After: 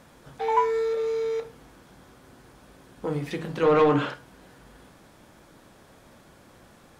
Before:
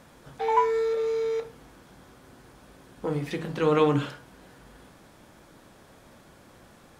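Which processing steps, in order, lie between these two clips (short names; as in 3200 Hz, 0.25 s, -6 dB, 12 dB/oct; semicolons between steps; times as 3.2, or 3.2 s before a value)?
3.63–4.14 overdrive pedal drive 17 dB, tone 1300 Hz, clips at -9.5 dBFS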